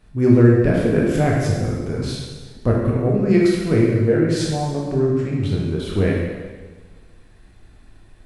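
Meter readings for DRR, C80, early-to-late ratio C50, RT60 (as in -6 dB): -4.0 dB, 2.5 dB, 0.5 dB, 1.4 s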